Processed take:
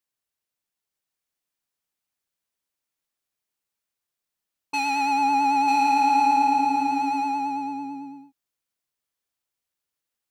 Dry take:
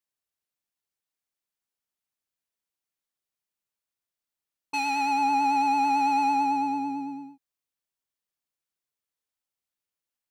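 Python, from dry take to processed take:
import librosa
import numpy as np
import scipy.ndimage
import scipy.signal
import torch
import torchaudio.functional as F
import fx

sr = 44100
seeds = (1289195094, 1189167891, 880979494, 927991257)

y = x + 10.0 ** (-4.5 / 20.0) * np.pad(x, (int(943 * sr / 1000.0), 0))[:len(x)]
y = y * librosa.db_to_amplitude(2.5)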